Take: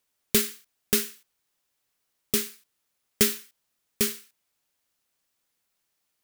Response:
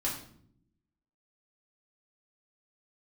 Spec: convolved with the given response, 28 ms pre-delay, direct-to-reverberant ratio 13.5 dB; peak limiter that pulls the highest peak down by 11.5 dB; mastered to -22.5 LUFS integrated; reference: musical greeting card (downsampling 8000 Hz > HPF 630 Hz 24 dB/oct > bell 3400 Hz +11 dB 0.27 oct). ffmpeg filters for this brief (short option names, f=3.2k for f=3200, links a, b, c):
-filter_complex "[0:a]alimiter=limit=-15dB:level=0:latency=1,asplit=2[a][b];[1:a]atrim=start_sample=2205,adelay=28[c];[b][c]afir=irnorm=-1:irlink=0,volume=-18.5dB[d];[a][d]amix=inputs=2:normalize=0,aresample=8000,aresample=44100,highpass=f=630:w=0.5412,highpass=f=630:w=1.3066,equalizer=f=3.4k:t=o:w=0.27:g=11,volume=14dB"